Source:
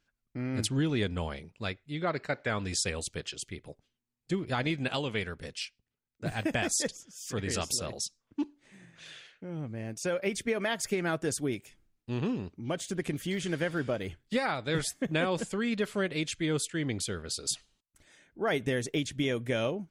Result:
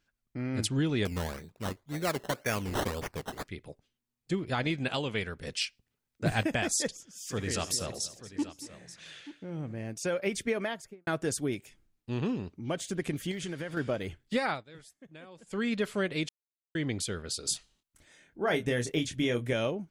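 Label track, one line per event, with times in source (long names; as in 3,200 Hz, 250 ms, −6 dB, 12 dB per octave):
1.050000	3.480000	sample-and-hold swept by an LFO 15×, swing 60% 1.9 Hz
5.470000	6.430000	clip gain +5.5 dB
7.070000	9.800000	multi-tap delay 75/234/883 ms −17/−17.5/−15 dB
10.510000	11.070000	fade out and dull
13.310000	13.770000	downward compressor 4 to 1, threshold −33 dBFS
14.520000	15.580000	duck −21 dB, fades 0.12 s
16.290000	16.750000	silence
17.450000	19.530000	double-tracking delay 25 ms −7 dB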